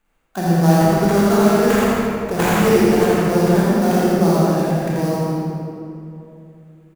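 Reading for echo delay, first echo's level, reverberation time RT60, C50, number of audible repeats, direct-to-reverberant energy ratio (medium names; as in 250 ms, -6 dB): 83 ms, -3.0 dB, 2.7 s, -6.0 dB, 1, -8.5 dB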